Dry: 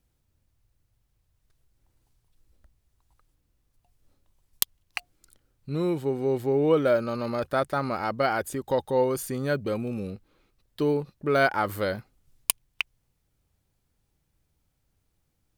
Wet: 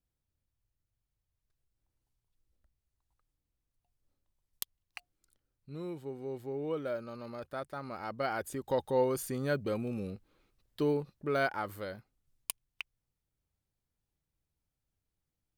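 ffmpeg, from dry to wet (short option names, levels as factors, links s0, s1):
-af "volume=0.562,afade=t=in:st=7.82:d=1.04:silence=0.354813,afade=t=out:st=10.84:d=1.02:silence=0.398107"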